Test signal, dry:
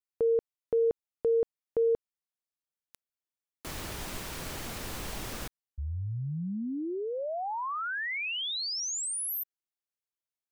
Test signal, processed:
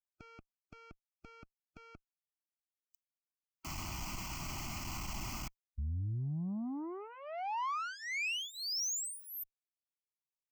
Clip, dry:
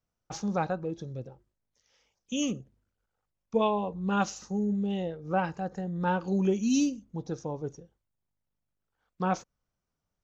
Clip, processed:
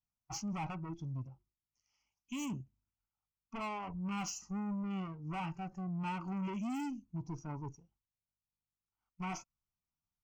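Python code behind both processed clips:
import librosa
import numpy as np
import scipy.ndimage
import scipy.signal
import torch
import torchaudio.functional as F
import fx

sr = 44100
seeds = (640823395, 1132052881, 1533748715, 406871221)

y = fx.tube_stage(x, sr, drive_db=36.0, bias=0.35)
y = fx.fixed_phaser(y, sr, hz=2500.0, stages=8)
y = fx.noise_reduce_blind(y, sr, reduce_db=12)
y = y * librosa.db_to_amplitude(3.0)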